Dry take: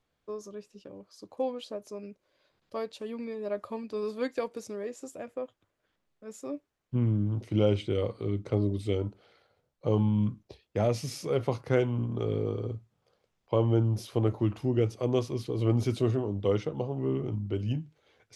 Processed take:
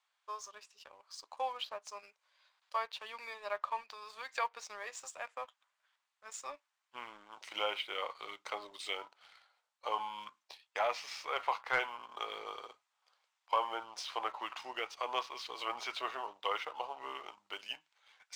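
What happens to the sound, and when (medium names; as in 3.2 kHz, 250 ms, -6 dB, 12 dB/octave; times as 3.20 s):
3.82–4.38 s: compression 4:1, threshold -39 dBFS
whole clip: Chebyshev band-pass 910–8900 Hz, order 3; low-pass that closes with the level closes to 2.8 kHz, closed at -42 dBFS; waveshaping leveller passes 1; trim +4.5 dB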